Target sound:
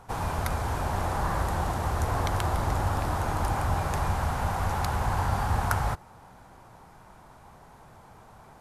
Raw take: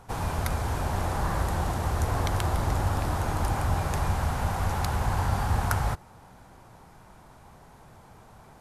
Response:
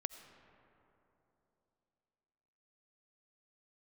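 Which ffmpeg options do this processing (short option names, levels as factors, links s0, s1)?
-af "equalizer=f=1000:t=o:w=1.8:g=3.5,volume=0.841"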